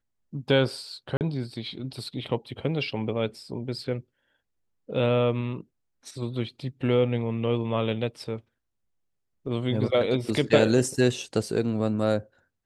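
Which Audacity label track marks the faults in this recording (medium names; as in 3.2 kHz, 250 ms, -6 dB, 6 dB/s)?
1.170000	1.210000	dropout 38 ms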